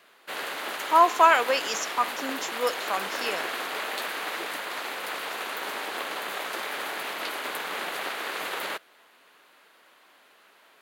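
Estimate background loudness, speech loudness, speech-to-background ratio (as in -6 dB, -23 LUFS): -32.0 LUFS, -24.0 LUFS, 8.0 dB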